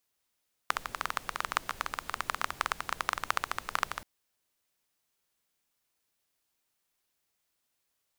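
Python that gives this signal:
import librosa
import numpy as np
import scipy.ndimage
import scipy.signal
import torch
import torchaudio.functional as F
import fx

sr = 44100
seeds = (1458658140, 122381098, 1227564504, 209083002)

y = fx.rain(sr, seeds[0], length_s=3.33, drops_per_s=15.0, hz=1200.0, bed_db=-14.0)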